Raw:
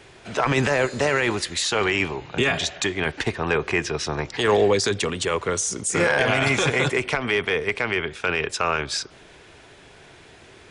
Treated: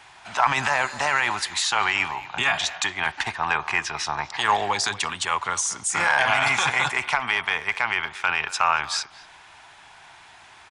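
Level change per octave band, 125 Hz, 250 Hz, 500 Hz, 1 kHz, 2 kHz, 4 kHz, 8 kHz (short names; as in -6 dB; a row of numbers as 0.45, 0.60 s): -11.0, -13.0, -11.5, +4.5, +1.5, +0.5, 0.0 dB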